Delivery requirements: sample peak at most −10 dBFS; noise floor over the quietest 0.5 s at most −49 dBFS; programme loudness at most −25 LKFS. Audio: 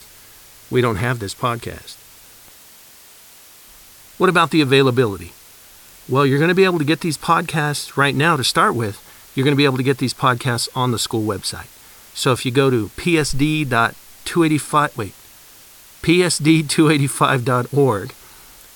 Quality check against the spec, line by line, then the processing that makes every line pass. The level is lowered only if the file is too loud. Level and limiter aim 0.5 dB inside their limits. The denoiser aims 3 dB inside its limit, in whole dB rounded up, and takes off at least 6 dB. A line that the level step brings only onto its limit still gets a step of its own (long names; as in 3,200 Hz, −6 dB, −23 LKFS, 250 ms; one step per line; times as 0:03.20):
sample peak −3.0 dBFS: out of spec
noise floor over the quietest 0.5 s −45 dBFS: out of spec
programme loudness −17.5 LKFS: out of spec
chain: level −8 dB